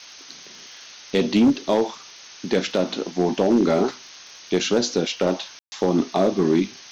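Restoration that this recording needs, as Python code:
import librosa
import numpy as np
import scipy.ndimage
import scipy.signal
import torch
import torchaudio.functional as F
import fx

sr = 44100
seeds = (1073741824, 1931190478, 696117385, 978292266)

y = fx.fix_declip(x, sr, threshold_db=-11.0)
y = fx.fix_declick_ar(y, sr, threshold=6.5)
y = fx.fix_ambience(y, sr, seeds[0], print_start_s=3.98, print_end_s=4.48, start_s=5.59, end_s=5.72)
y = fx.noise_reduce(y, sr, print_start_s=3.98, print_end_s=4.48, reduce_db=23.0)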